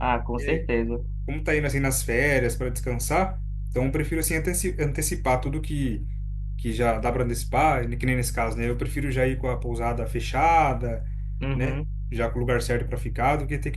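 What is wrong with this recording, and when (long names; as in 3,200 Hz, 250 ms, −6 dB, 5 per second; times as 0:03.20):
mains hum 50 Hz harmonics 3 −30 dBFS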